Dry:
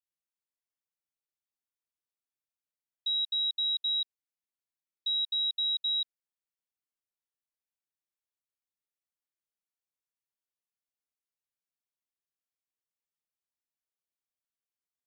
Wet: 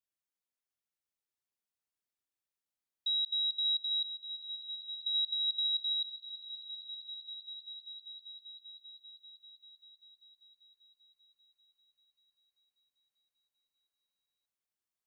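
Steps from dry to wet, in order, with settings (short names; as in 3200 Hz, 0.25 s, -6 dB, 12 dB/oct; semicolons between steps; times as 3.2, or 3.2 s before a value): swelling echo 0.196 s, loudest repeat 5, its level -12 dB; gain -2 dB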